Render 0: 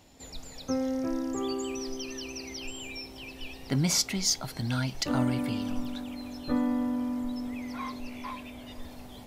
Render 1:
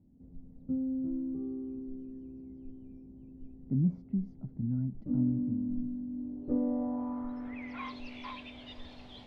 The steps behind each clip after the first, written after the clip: low-pass sweep 220 Hz -> 3.6 kHz, 6.08–7.98 s; trim -5.5 dB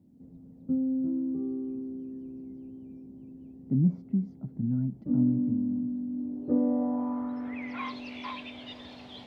high-pass 120 Hz 12 dB/octave; trim +5 dB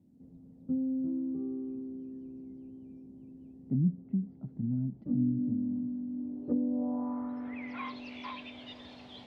low-pass that closes with the level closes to 340 Hz, closed at -22 dBFS; trim -3.5 dB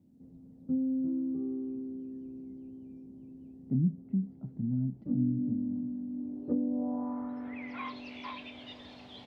doubling 31 ms -14 dB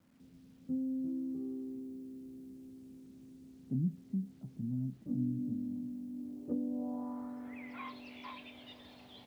bit crusher 11-bit; trim -5.5 dB

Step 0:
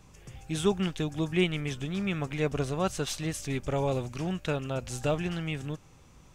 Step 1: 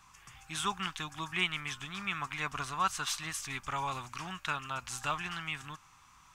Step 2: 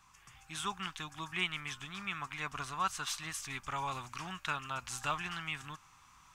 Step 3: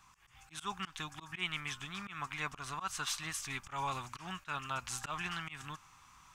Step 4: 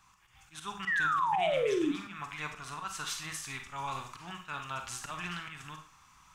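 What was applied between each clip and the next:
resonant low shelf 740 Hz -13 dB, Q 3
gain riding 2 s; trim -3 dB
slow attack 124 ms; trim +1 dB
painted sound fall, 0.87–1.92 s, 270–2000 Hz -29 dBFS; reverberation RT60 0.40 s, pre-delay 35 ms, DRR 5 dB; trim -1 dB

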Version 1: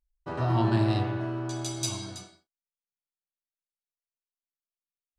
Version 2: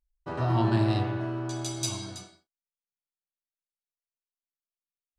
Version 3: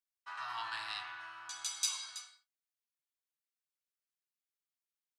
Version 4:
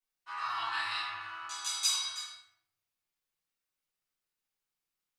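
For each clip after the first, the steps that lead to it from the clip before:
no audible change
inverse Chebyshev high-pass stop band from 550 Hz, stop band 40 dB; trim -1.5 dB
simulated room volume 140 m³, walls mixed, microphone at 3.3 m; trim -5.5 dB

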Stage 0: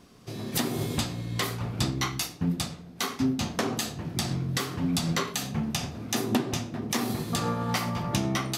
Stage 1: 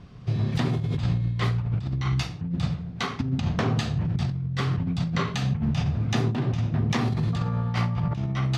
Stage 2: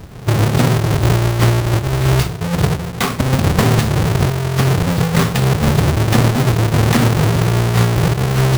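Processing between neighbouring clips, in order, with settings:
low-pass 3.5 kHz 12 dB/octave; resonant low shelf 190 Hz +10.5 dB, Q 1.5; compressor with a negative ratio -25 dBFS, ratio -1
square wave that keeps the level; trim +7 dB

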